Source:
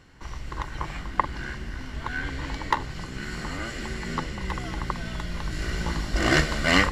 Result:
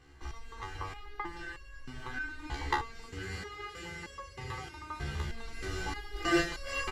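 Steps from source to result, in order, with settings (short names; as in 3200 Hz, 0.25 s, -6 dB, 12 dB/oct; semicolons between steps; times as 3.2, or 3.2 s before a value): comb 2.5 ms, depth 66%; 3.11–5.29 frequency shift +29 Hz; stepped resonator 3.2 Hz 71–550 Hz; gain +2 dB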